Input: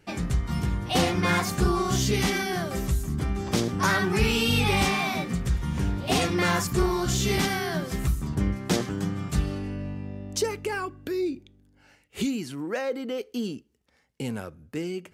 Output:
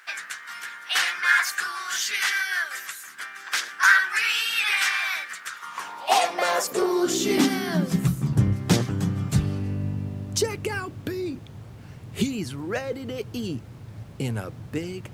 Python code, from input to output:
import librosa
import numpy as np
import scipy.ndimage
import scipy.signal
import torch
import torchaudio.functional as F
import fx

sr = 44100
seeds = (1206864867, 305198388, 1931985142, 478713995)

y = fx.hpss(x, sr, part='percussive', gain_db=8)
y = fx.dmg_noise_colour(y, sr, seeds[0], colour='brown', level_db=-35.0)
y = fx.filter_sweep_highpass(y, sr, from_hz=1600.0, to_hz=110.0, start_s=5.37, end_s=8.44, q=4.4)
y = y * 10.0 ** (-4.0 / 20.0)